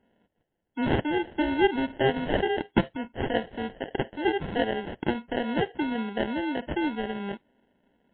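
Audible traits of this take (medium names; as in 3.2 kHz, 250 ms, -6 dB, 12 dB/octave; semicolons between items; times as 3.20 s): aliases and images of a low sample rate 1.2 kHz, jitter 0%; MP3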